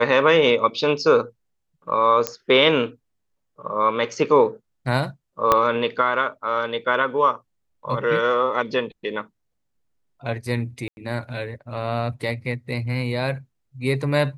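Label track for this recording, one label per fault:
2.270000	2.270000	pop -6 dBFS
5.520000	5.520000	pop -3 dBFS
10.880000	10.970000	gap 91 ms

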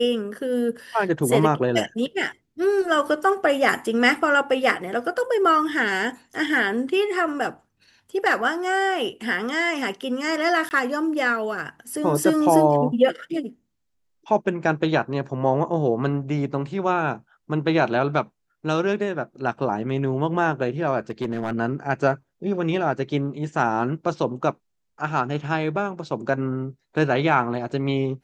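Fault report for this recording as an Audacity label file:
10.690000	10.710000	gap 19 ms
21.100000	21.530000	clipped -20 dBFS

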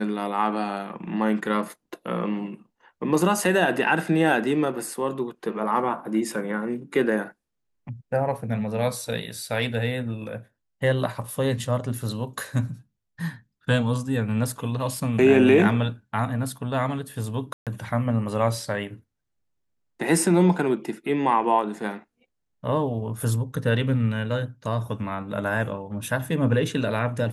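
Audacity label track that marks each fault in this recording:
17.530000	17.670000	gap 0.137 s

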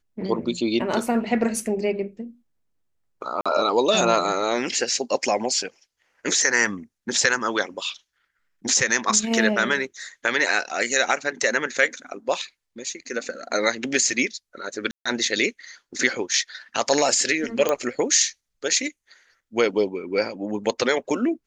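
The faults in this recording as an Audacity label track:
3.410000	3.460000	gap 46 ms
14.910000	15.050000	gap 0.145 s
17.690000	17.690000	pop -8 dBFS

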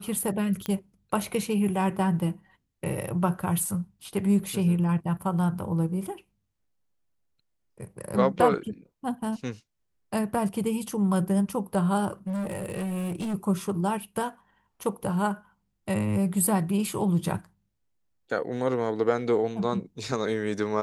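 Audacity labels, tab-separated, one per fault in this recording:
0.660000	0.660000	pop -16 dBFS
12.270000	13.350000	clipped -27.5 dBFS

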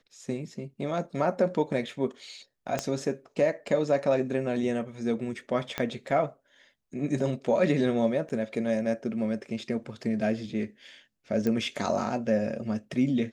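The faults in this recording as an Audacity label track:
2.790000	2.790000	pop -14 dBFS
5.780000	5.780000	pop -14 dBFS
8.290000	8.300000	gap 8.8 ms
11.470000	11.470000	pop -17 dBFS

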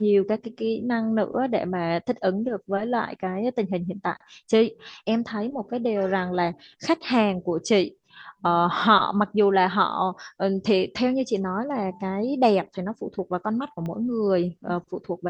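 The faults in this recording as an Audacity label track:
13.860000	13.860000	pop -22 dBFS

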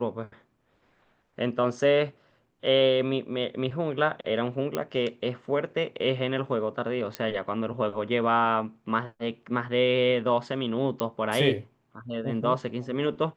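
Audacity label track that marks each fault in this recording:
4.750000	4.750000	pop -14 dBFS
7.150000	7.150000	pop -15 dBFS
11.000000	11.000000	pop -14 dBFS

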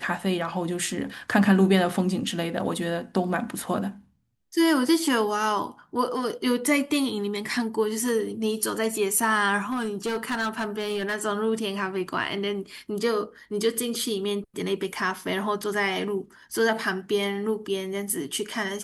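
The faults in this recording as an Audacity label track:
9.700000	11.160000	clipped -23 dBFS

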